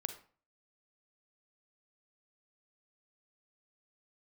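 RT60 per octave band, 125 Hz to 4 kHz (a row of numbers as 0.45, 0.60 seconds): 0.50, 0.45, 0.40, 0.40, 0.35, 0.30 seconds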